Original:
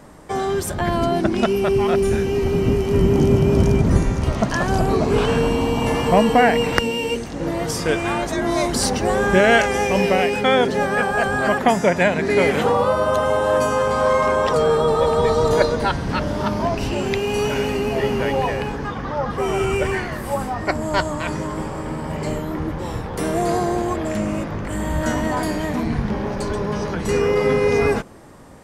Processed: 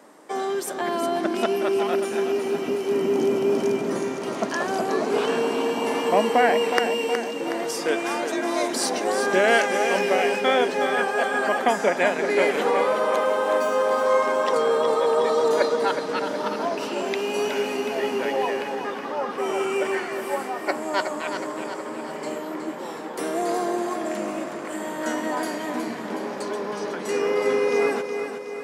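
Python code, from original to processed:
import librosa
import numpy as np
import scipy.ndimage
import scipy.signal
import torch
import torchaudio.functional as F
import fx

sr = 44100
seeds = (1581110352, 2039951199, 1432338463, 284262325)

p1 = fx.median_filter(x, sr, points=5, at=(13.16, 14.06))
p2 = scipy.signal.sosfilt(scipy.signal.butter(4, 260.0, 'highpass', fs=sr, output='sos'), p1)
p3 = p2 + fx.echo_feedback(p2, sr, ms=368, feedback_pct=55, wet_db=-8.0, dry=0)
y = p3 * librosa.db_to_amplitude(-4.0)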